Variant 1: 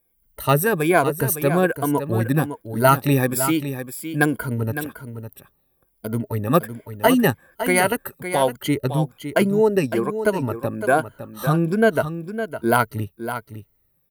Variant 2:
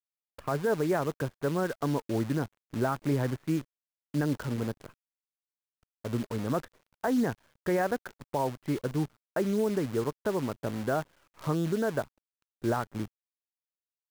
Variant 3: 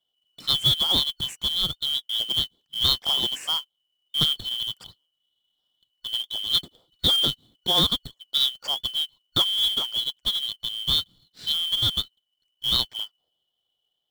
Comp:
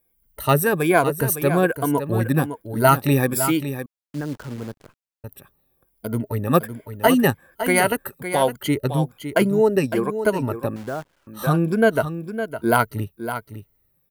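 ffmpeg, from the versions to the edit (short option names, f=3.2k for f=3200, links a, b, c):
-filter_complex "[1:a]asplit=2[a][b];[0:a]asplit=3[c][d][e];[c]atrim=end=3.862[f];[a]atrim=start=3.858:end=5.242[g];[d]atrim=start=5.238:end=10.762[h];[b]atrim=start=10.758:end=11.272[i];[e]atrim=start=11.268[j];[f][g]acrossfade=d=0.004:c1=hsin:c2=hsin[k];[k][h]acrossfade=d=0.004:c1=hsin:c2=hsin[l];[l][i]acrossfade=d=0.004:c1=hsin:c2=hsin[m];[m][j]acrossfade=d=0.004:c1=hsin:c2=hsin"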